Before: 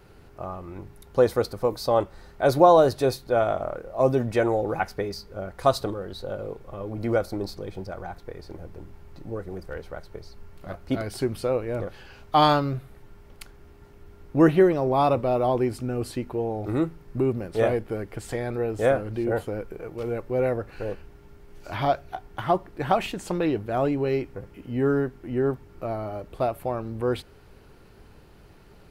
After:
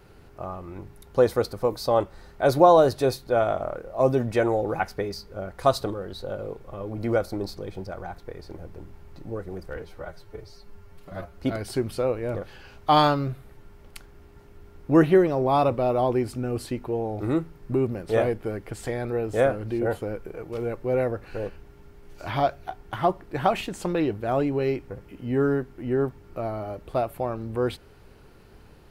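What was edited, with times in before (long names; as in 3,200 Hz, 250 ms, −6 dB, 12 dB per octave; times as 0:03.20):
0:09.76–0:10.85: time-stretch 1.5×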